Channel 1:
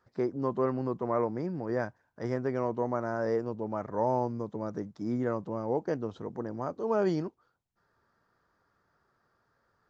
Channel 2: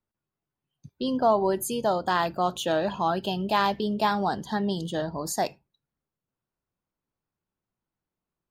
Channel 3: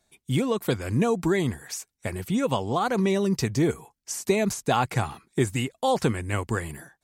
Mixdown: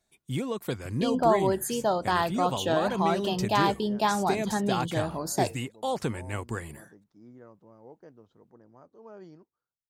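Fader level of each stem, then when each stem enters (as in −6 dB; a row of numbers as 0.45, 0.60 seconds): −19.5, −1.0, −6.5 decibels; 2.15, 0.00, 0.00 seconds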